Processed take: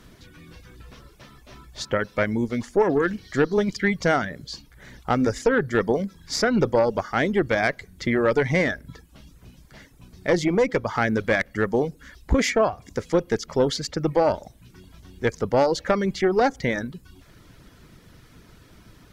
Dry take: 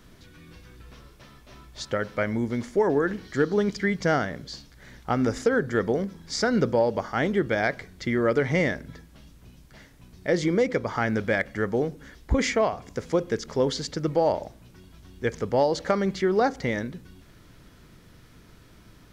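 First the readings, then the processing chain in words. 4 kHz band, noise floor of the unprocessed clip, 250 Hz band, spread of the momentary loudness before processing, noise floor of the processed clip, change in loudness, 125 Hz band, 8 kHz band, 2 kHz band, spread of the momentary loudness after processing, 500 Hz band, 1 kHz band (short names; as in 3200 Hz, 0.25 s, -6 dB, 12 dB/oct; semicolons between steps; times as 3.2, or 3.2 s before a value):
+3.0 dB, -53 dBFS, +2.0 dB, 9 LU, -53 dBFS, +2.5 dB, +1.5 dB, +3.0 dB, +3.0 dB, 8 LU, +2.5 dB, +3.0 dB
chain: tube stage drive 15 dB, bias 0.5; reverb removal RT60 0.53 s; gain +5.5 dB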